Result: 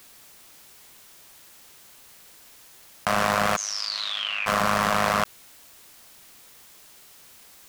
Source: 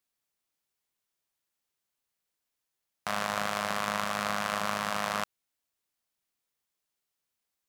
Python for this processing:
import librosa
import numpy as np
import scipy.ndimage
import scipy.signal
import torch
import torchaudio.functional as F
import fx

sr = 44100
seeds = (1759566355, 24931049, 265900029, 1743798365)

y = fx.leveller(x, sr, passes=3)
y = fx.bandpass_q(y, sr, hz=fx.line((3.55, 6800.0), (4.46, 2400.0)), q=18.0, at=(3.55, 4.46), fade=0.02)
y = fx.env_flatten(y, sr, amount_pct=70)